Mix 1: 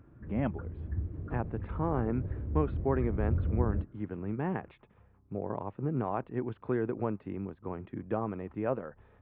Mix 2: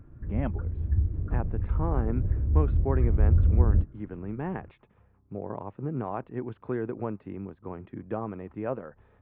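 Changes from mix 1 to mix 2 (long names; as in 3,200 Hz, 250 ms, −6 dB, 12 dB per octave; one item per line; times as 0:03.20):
speech: add high-frequency loss of the air 51 metres
background: remove high-pass filter 220 Hz 6 dB per octave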